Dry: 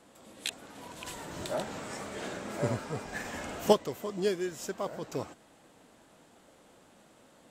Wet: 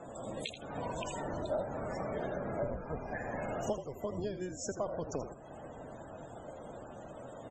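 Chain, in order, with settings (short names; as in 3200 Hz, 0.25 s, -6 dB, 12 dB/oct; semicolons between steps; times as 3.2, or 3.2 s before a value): octaver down 1 oct, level +1 dB; compressor 12:1, threshold -45 dBFS, peak gain reduction 29 dB; fifteen-band EQ 100 Hz -4 dB, 630 Hz +7 dB, 6300 Hz +4 dB; frequency-shifting echo 81 ms, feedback 34%, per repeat -51 Hz, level -9.5 dB; loudest bins only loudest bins 64; 1.2–3.39 high shelf 4000 Hz -9.5 dB; gain +9 dB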